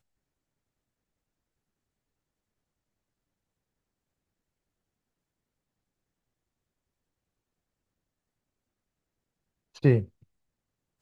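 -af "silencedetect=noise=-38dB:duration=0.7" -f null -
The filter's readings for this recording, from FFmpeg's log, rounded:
silence_start: 0.00
silence_end: 9.77 | silence_duration: 9.77
silence_start: 10.04
silence_end: 11.01 | silence_duration: 0.97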